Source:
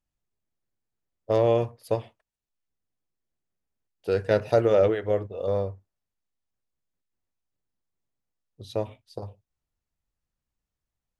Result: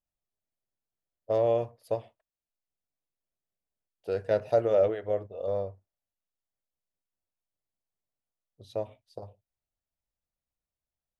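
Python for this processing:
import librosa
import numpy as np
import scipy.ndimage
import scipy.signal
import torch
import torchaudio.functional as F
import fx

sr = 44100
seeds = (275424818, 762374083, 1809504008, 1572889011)

y = fx.peak_eq(x, sr, hz=630.0, db=8.0, octaves=0.71)
y = y * 10.0 ** (-9.0 / 20.0)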